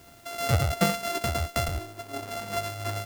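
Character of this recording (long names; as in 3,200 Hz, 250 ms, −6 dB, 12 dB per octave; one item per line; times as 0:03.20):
a buzz of ramps at a fixed pitch in blocks of 64 samples
tremolo triangle 2.8 Hz, depth 45%
a quantiser's noise floor 10 bits, dither triangular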